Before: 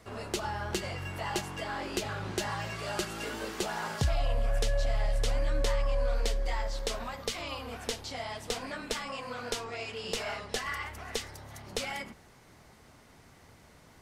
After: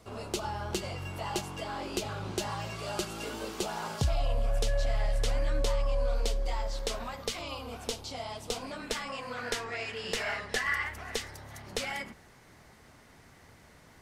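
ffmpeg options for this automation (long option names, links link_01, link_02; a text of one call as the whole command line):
ffmpeg -i in.wav -af "asetnsamples=nb_out_samples=441:pad=0,asendcmd='4.67 equalizer g 0;5.6 equalizer g -8;6.69 equalizer g -2;7.39 equalizer g -9.5;8.8 equalizer g 1.5;9.37 equalizer g 9.5;10.94 equalizer g 3.5',equalizer=frequency=1800:width_type=o:width=0.51:gain=-8" out.wav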